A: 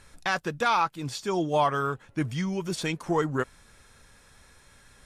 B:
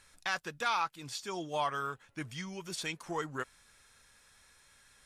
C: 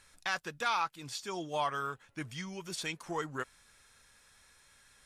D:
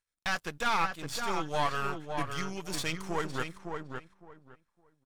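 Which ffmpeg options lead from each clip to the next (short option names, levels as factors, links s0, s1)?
-af "tiltshelf=f=860:g=-5.5,volume=0.355"
-af anull
-filter_complex "[0:a]aeval=exprs='if(lt(val(0),0),0.251*val(0),val(0))':c=same,agate=range=0.0282:threshold=0.00178:ratio=16:detection=peak,asplit=2[s0][s1];[s1]adelay=560,lowpass=f=2100:p=1,volume=0.562,asplit=2[s2][s3];[s3]adelay=560,lowpass=f=2100:p=1,volume=0.2,asplit=2[s4][s5];[s5]adelay=560,lowpass=f=2100:p=1,volume=0.2[s6];[s0][s2][s4][s6]amix=inputs=4:normalize=0,volume=2.11"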